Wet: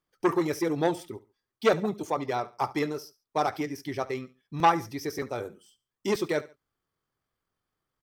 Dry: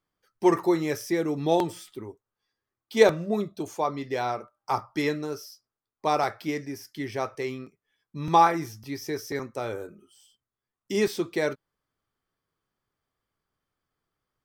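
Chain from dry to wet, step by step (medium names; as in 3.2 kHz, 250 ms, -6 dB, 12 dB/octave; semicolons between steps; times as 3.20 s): tempo 1.8×; feedback delay 71 ms, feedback 30%, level -19.5 dB; transformer saturation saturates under 1.2 kHz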